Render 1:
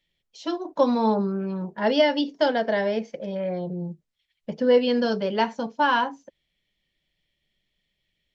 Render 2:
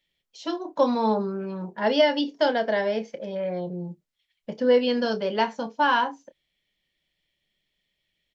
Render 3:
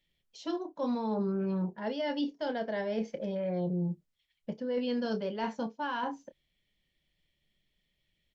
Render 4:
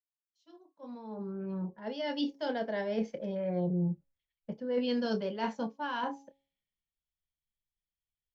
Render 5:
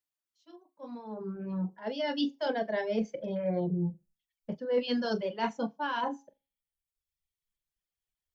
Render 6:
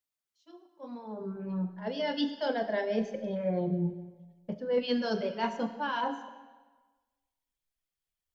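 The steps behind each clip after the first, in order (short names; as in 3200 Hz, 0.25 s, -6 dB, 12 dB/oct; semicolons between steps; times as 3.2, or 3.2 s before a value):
low shelf 210 Hz -6.5 dB; doubler 28 ms -13 dB
reverse; compressor 8:1, threshold -29 dBFS, peak gain reduction 14.5 dB; reverse; low shelf 250 Hz +10.5 dB; gain -3.5 dB
opening faded in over 2.36 s; de-hum 275 Hz, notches 4; three-band expander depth 70%
notches 50/100/150/200/250 Hz; on a send: flutter echo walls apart 7.3 m, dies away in 0.22 s; on the sum: reverb removal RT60 1.1 s; gain +3.5 dB
digital reverb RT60 1.3 s, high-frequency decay 0.9×, pre-delay 25 ms, DRR 10 dB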